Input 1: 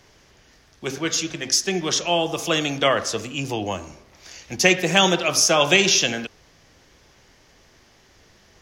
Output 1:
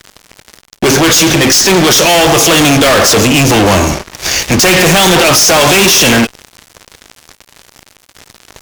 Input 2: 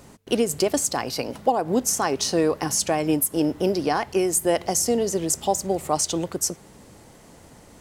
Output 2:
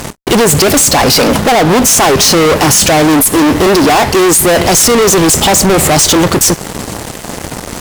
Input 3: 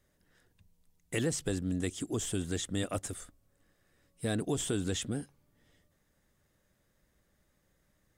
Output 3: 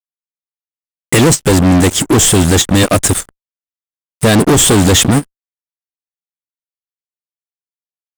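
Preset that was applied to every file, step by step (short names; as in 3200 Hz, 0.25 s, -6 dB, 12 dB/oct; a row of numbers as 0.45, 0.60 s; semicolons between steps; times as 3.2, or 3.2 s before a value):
fuzz box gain 40 dB, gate -48 dBFS; ending taper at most 530 dB/s; gain +7 dB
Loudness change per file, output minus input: +13.0, +16.0, +24.5 LU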